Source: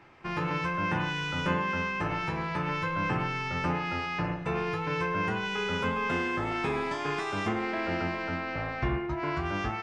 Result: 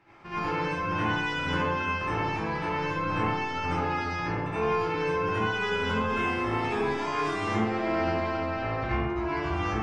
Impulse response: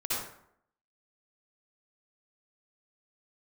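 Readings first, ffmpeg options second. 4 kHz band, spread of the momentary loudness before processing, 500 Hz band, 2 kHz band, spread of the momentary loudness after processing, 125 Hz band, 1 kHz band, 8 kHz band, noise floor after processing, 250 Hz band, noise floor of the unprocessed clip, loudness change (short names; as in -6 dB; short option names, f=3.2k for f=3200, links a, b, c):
+1.0 dB, 3 LU, +4.0 dB, +1.0 dB, 3 LU, +0.5 dB, +3.0 dB, +1.0 dB, -32 dBFS, +1.5 dB, -35 dBFS, +2.0 dB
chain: -filter_complex "[1:a]atrim=start_sample=2205,asetrate=39249,aresample=44100[a];[0:a][a]afir=irnorm=-1:irlink=0,volume=-5dB"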